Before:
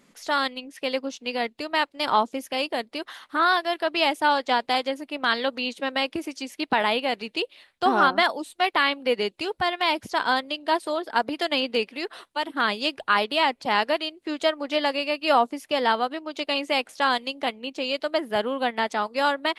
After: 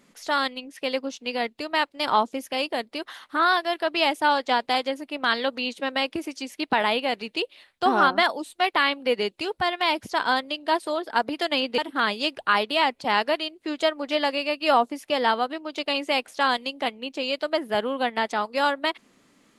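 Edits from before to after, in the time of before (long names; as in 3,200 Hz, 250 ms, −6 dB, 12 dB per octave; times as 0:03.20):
0:11.78–0:12.39: remove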